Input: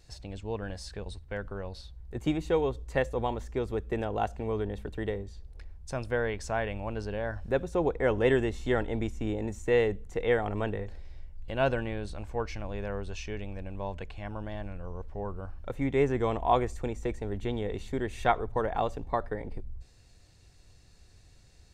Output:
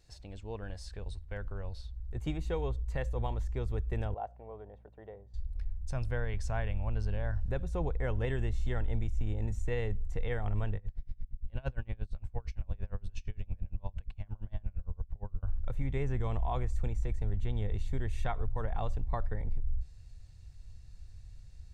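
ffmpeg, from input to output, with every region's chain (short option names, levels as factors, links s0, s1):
-filter_complex "[0:a]asettb=1/sr,asplit=3[s0][s1][s2];[s0]atrim=end=4.144[s3];[s1]atrim=start=4.14:end=5.34,asetpts=PTS-STARTPTS,afade=t=in:d=0.004:c=qsin,afade=t=out:st=1.196:d=0.004:c=qsin,bandpass=f=670:t=q:w=2,aeval=exprs='val(0)+0.000794*(sin(2*PI*60*n/s)+sin(2*PI*2*60*n/s)/2+sin(2*PI*3*60*n/s)/3+sin(2*PI*4*60*n/s)/4+sin(2*PI*5*60*n/s)/5)':c=same[s4];[s2]atrim=start=5.336[s5];[s3][s4]acrossfade=d=0.004:c1=hsin:c2=qsin[s6];[s6][s5]acrossfade=d=0.004:c1=qsin:c2=hsin,asettb=1/sr,asplit=3[s7][s8][s9];[s7]atrim=end=10.764[s10];[s8]atrim=start=10.76:end=15.43,asetpts=PTS-STARTPTS,afade=t=in:d=0.004:c=qsin,afade=t=out:st=4.666:d=0.004:c=qsin,aeval=exprs='val(0)+0.00447*(sin(2*PI*60*n/s)+sin(2*PI*2*60*n/s)/2+sin(2*PI*3*60*n/s)/3+sin(2*PI*4*60*n/s)/4+sin(2*PI*5*60*n/s)/5)':c=same,aeval=exprs='val(0)*pow(10,-30*(0.5-0.5*cos(2*PI*8.7*n/s))/20)':c=same[s11];[s9]atrim=start=15.426[s12];[s10][s11]acrossfade=d=0.004:c1=hsin:c2=qsin[s13];[s13][s12]acrossfade=d=0.004:c1=qsin:c2=hsin,asubboost=boost=7.5:cutoff=110,alimiter=limit=0.158:level=0:latency=1:release=103,volume=0.473"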